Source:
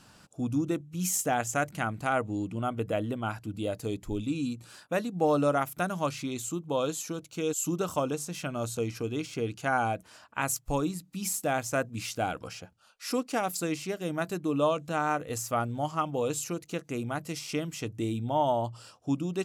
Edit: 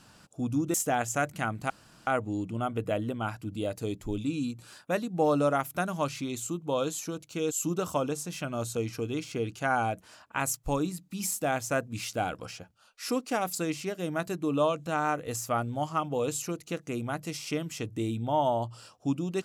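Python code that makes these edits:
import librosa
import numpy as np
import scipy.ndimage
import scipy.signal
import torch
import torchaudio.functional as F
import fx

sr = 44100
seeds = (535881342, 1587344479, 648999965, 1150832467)

y = fx.edit(x, sr, fx.cut(start_s=0.74, length_s=0.39),
    fx.insert_room_tone(at_s=2.09, length_s=0.37), tone=tone)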